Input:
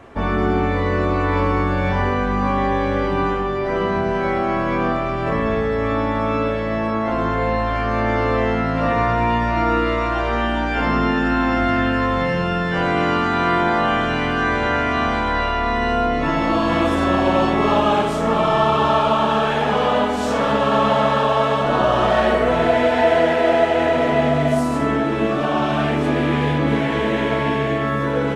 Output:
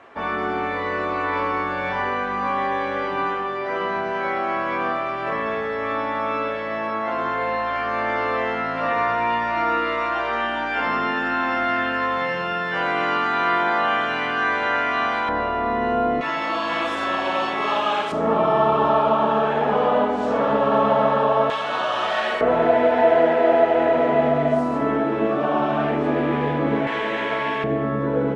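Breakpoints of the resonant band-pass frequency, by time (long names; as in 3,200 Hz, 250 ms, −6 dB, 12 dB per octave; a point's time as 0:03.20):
resonant band-pass, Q 0.51
1,600 Hz
from 0:15.29 480 Hz
from 0:16.21 2,400 Hz
from 0:18.12 540 Hz
from 0:21.50 3,000 Hz
from 0:22.41 610 Hz
from 0:26.87 1,600 Hz
from 0:27.64 330 Hz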